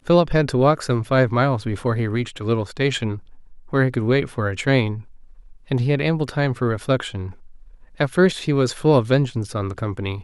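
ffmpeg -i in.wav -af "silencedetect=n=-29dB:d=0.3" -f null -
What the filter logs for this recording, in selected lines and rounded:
silence_start: 3.18
silence_end: 3.73 | silence_duration: 0.55
silence_start: 5.01
silence_end: 5.71 | silence_duration: 0.70
silence_start: 7.31
silence_end: 8.00 | silence_duration: 0.70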